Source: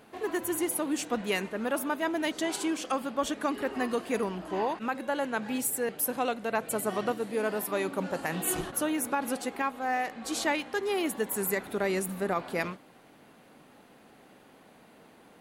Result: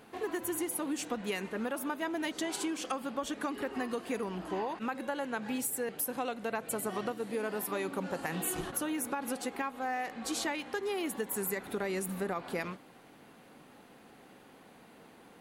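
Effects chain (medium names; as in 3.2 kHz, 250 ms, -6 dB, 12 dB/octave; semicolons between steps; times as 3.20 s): band-stop 620 Hz, Q 14; compression, threshold -31 dBFS, peak gain reduction 8.5 dB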